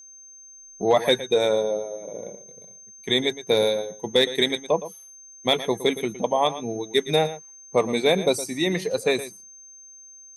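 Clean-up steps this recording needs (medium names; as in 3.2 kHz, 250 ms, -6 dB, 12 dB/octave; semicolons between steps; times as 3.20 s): clip repair -9 dBFS; band-stop 6.3 kHz, Q 30; inverse comb 115 ms -14 dB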